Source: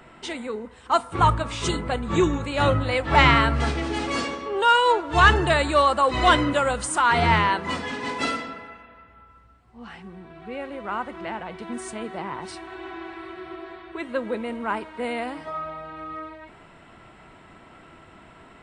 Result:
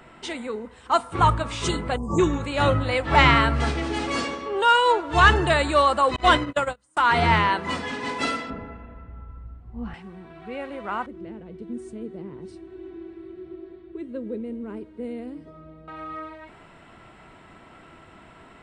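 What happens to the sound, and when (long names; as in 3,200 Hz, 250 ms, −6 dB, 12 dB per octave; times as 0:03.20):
0:01.97–0:02.19: time-frequency box erased 1,200–4,800 Hz
0:06.16–0:06.97: noise gate −22 dBFS, range −36 dB
0:08.50–0:09.94: spectral tilt −4.5 dB per octave
0:11.06–0:15.88: drawn EQ curve 420 Hz 0 dB, 820 Hz −22 dB, 5,500 Hz −16 dB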